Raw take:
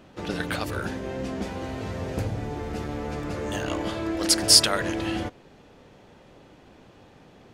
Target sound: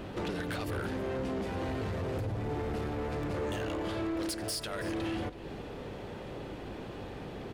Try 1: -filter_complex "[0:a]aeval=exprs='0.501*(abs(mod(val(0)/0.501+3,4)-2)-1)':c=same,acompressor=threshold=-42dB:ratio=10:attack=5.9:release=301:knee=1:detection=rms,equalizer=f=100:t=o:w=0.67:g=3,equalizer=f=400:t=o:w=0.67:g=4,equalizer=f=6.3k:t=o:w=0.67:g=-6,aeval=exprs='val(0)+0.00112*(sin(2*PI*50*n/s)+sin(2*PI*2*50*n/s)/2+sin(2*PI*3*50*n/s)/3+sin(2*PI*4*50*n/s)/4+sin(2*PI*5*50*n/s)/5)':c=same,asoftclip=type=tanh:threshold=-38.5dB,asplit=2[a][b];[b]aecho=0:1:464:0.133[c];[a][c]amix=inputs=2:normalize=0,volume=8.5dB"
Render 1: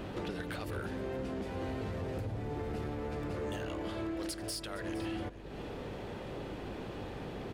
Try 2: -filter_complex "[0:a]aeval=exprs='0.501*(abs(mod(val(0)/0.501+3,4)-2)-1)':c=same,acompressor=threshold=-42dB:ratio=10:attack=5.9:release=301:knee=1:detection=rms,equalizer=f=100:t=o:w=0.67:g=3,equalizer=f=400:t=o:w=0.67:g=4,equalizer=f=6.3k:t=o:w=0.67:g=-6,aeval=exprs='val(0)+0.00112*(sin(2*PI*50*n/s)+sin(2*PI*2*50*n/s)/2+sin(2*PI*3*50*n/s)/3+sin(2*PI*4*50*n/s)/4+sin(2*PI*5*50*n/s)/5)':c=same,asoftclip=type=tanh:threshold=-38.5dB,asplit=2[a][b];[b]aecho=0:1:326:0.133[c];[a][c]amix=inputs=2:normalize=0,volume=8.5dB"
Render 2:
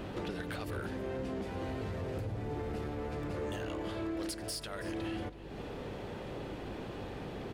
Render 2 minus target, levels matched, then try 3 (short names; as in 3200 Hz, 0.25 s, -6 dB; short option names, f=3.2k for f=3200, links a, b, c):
compressor: peak gain reduction +6 dB
-filter_complex "[0:a]aeval=exprs='0.501*(abs(mod(val(0)/0.501+3,4)-2)-1)':c=same,acompressor=threshold=-35.5dB:ratio=10:attack=5.9:release=301:knee=1:detection=rms,equalizer=f=100:t=o:w=0.67:g=3,equalizer=f=400:t=o:w=0.67:g=4,equalizer=f=6.3k:t=o:w=0.67:g=-6,aeval=exprs='val(0)+0.00112*(sin(2*PI*50*n/s)+sin(2*PI*2*50*n/s)/2+sin(2*PI*3*50*n/s)/3+sin(2*PI*4*50*n/s)/4+sin(2*PI*5*50*n/s)/5)':c=same,asoftclip=type=tanh:threshold=-38.5dB,asplit=2[a][b];[b]aecho=0:1:326:0.133[c];[a][c]amix=inputs=2:normalize=0,volume=8.5dB"